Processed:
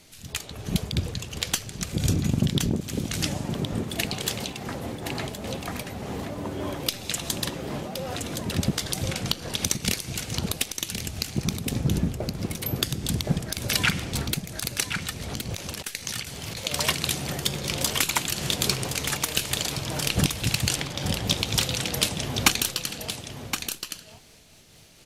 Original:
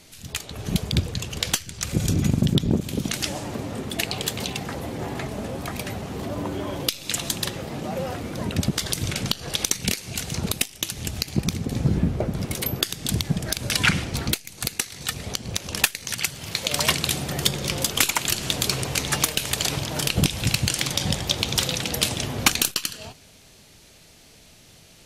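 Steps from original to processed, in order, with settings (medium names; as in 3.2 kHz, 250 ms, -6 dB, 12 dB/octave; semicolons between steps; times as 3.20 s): 15.21–16.58 s: compressor with a negative ratio -31 dBFS, ratio -1; 20.74–21.25 s: low-pass 1.9 kHz -> 3.9 kHz 6 dB/octave; crackle 250 per s -52 dBFS; delay 1069 ms -7 dB; random flutter of the level, depth 60%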